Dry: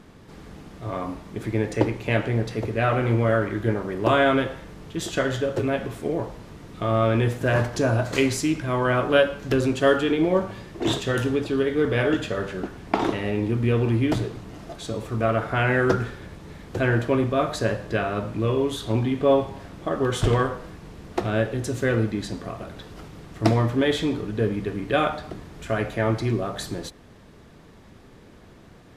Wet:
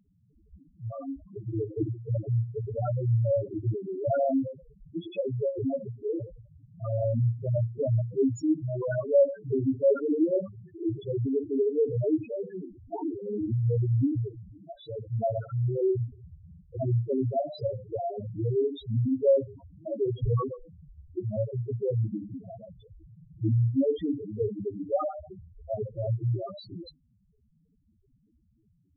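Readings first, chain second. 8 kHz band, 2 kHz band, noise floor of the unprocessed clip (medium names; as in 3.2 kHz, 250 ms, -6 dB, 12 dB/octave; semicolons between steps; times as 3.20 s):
under -20 dB, under -25 dB, -49 dBFS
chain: spectral noise reduction 9 dB; hum notches 50/100/150/200/250/300/350 Hz; loudest bins only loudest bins 2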